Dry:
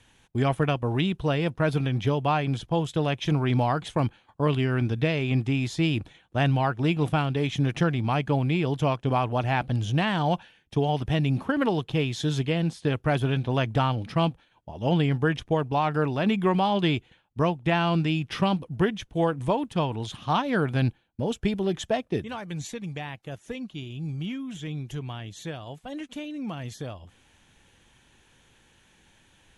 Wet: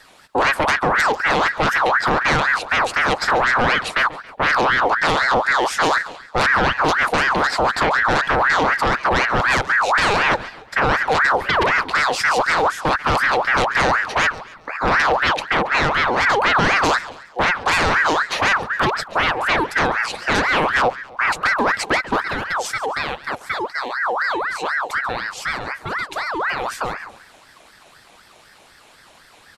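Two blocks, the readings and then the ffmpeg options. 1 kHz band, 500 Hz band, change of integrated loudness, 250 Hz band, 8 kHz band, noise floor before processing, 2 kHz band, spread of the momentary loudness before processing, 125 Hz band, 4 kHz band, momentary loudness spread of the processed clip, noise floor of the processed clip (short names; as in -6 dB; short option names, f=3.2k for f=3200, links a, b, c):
+12.5 dB, +5.5 dB, +8.5 dB, -2.5 dB, +13.5 dB, -62 dBFS, +18.0 dB, 11 LU, -7.0 dB, +10.0 dB, 8 LU, -49 dBFS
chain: -af "aeval=exprs='0.299*sin(PI/2*3.16*val(0)/0.299)':c=same,aecho=1:1:138|276|414|552:0.15|0.0643|0.0277|0.0119,aeval=exprs='val(0)*sin(2*PI*1200*n/s+1200*0.5/4*sin(2*PI*4*n/s))':c=same"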